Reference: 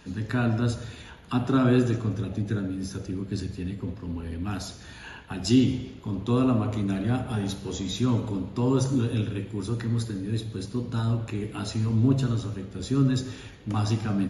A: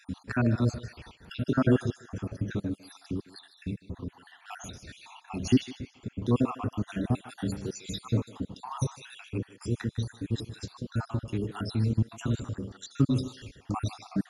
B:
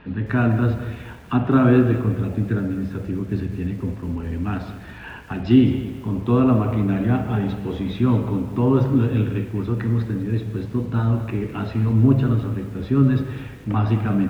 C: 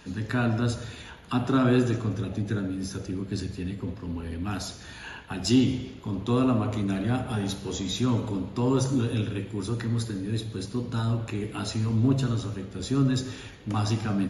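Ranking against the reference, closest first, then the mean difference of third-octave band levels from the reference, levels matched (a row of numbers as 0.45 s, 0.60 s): C, B, A; 1.5 dB, 3.5 dB, 7.5 dB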